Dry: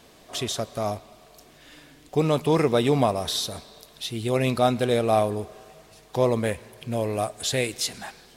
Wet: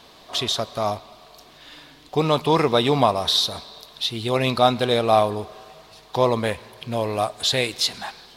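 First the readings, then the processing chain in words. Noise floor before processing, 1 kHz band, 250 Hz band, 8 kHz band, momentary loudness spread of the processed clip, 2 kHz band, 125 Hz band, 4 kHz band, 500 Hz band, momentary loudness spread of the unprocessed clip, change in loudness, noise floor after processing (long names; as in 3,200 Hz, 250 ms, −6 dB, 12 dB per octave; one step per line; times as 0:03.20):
−53 dBFS, +6.0 dB, +0.5 dB, 0.0 dB, 13 LU, +4.0 dB, 0.0 dB, +8.5 dB, +2.0 dB, 13 LU, +3.5 dB, −49 dBFS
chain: octave-band graphic EQ 1,000/4,000/8,000 Hz +8/+10/−4 dB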